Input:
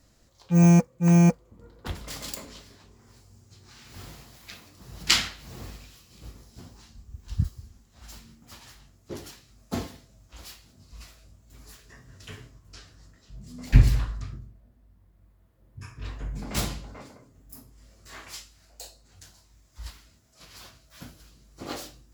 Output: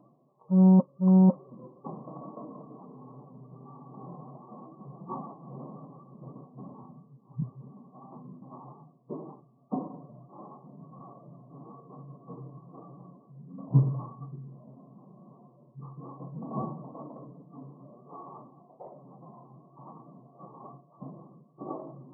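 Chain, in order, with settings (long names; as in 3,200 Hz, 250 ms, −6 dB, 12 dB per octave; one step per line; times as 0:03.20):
brick-wall band-pass 110–1,200 Hz
reversed playback
upward compression, threshold −36 dBFS
reversed playback
phase-vocoder pitch shift with formants kept +1.5 semitones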